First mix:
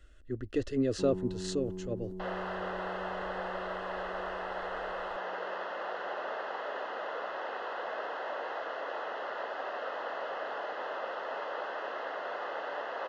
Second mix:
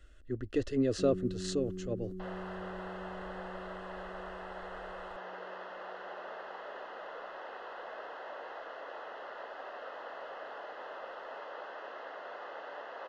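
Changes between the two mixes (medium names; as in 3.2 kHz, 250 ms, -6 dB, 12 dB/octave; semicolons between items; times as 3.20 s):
first sound: add brick-wall FIR band-stop 390–1100 Hz; second sound -7.0 dB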